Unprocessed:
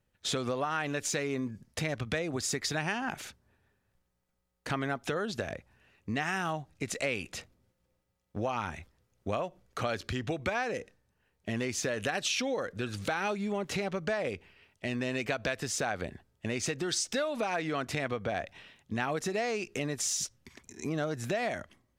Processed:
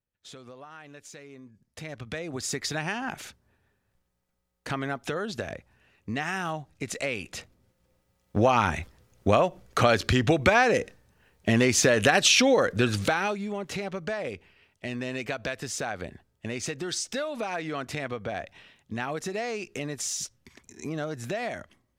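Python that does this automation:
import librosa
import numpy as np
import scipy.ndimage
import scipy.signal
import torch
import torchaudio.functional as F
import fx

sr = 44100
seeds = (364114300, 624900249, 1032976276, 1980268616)

y = fx.gain(x, sr, db=fx.line((1.53, -14.0), (1.87, -6.0), (2.54, 1.5), (7.25, 1.5), (8.42, 11.5), (12.88, 11.5), (13.46, 0.0)))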